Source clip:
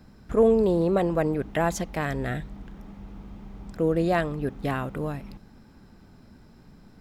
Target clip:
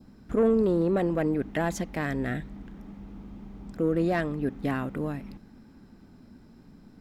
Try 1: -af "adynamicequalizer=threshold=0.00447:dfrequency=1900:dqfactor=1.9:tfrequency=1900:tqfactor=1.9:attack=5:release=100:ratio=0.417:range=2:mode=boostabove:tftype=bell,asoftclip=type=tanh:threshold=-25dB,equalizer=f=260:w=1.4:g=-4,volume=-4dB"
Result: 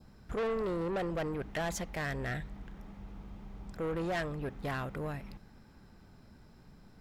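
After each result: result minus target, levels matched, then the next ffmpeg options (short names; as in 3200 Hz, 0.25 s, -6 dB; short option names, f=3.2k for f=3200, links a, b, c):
soft clip: distortion +10 dB; 250 Hz band -3.5 dB
-af "adynamicequalizer=threshold=0.00447:dfrequency=1900:dqfactor=1.9:tfrequency=1900:tqfactor=1.9:attack=5:release=100:ratio=0.417:range=2:mode=boostabove:tftype=bell,asoftclip=type=tanh:threshold=-15dB,equalizer=f=260:w=1.4:g=-4,volume=-4dB"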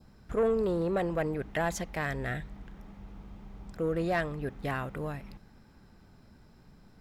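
250 Hz band -3.5 dB
-af "adynamicequalizer=threshold=0.00447:dfrequency=1900:dqfactor=1.9:tfrequency=1900:tqfactor=1.9:attack=5:release=100:ratio=0.417:range=2:mode=boostabove:tftype=bell,asoftclip=type=tanh:threshold=-15dB,equalizer=f=260:w=1.4:g=7.5,volume=-4dB"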